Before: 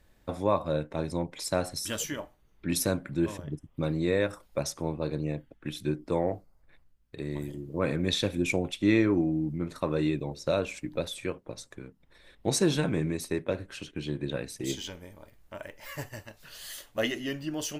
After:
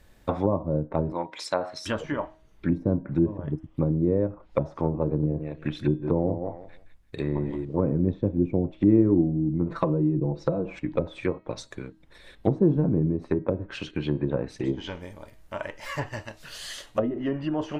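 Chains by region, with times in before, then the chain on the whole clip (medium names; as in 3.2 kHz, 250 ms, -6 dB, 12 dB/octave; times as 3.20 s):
1.12–1.86 s: high-pass 840 Hz 6 dB/octave + treble shelf 5.5 kHz -9 dB
5.06–7.65 s: bass shelf 62 Hz +3 dB + feedback delay 170 ms, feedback 20%, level -9 dB
9.69–10.79 s: comb 6 ms, depth 99% + compression 2.5:1, threshold -26 dBFS
whole clip: low-pass that closes with the level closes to 370 Hz, closed at -26 dBFS; de-hum 317.3 Hz, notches 14; dynamic bell 990 Hz, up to +6 dB, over -53 dBFS, Q 1.7; trim +6.5 dB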